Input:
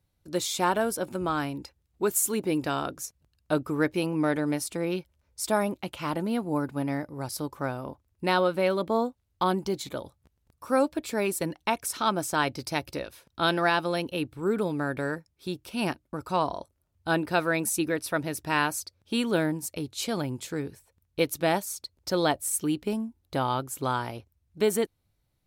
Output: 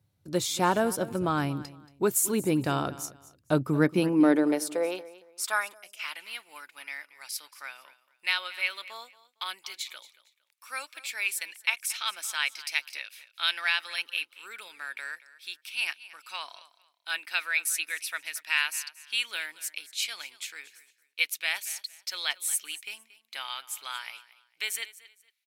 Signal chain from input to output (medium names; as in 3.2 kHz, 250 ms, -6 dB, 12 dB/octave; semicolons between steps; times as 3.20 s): high-pass sweep 110 Hz -> 2.3 kHz, 3.52–5.94 s; feedback delay 229 ms, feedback 26%, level -18 dB; time-frequency box 5.74–6.00 s, 760–4800 Hz -14 dB